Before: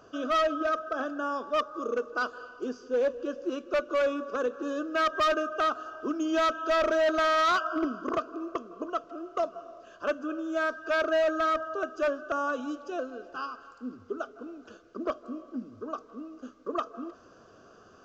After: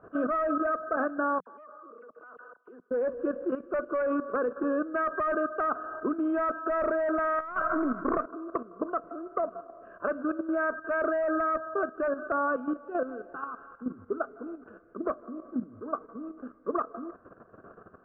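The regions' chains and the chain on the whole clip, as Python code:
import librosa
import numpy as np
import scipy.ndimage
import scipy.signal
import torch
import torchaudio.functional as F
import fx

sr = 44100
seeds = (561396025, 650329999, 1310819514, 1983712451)

y = fx.chain(x, sr, fx.highpass(hz=640.0, slope=6),
    fx.level_steps(step_db=24),
    fx.dispersion(late='lows', ms=70.0, hz=3000.0), at=(1.4, 2.91))
y = fx.chain(y, sr, fx.halfwave_gain(db=-3.0),
    fx.over_compress(threshold_db=-29.0, ratio=-0.5), at=(7.39, 8.26))
y = fx.peak_eq(y, sr, hz=180.0, db=5.0, octaves=0.33)
y = fx.level_steps(y, sr, step_db=11)
y = scipy.signal.sosfilt(scipy.signal.butter(6, 1800.0, 'lowpass', fs=sr, output='sos'), y)
y = y * 10.0 ** (6.0 / 20.0)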